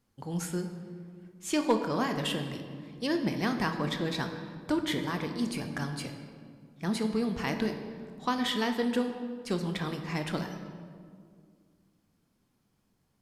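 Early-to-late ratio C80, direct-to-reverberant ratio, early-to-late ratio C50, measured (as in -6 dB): 8.5 dB, 5.0 dB, 7.5 dB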